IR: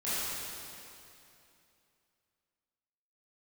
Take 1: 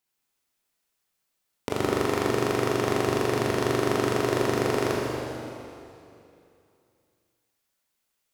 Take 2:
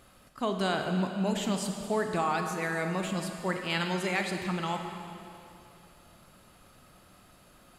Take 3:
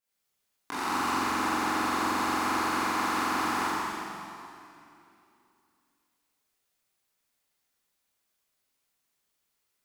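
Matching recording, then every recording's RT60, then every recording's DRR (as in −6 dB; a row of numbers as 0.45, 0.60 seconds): 3; 2.7, 2.7, 2.7 seconds; −4.0, 4.0, −13.5 decibels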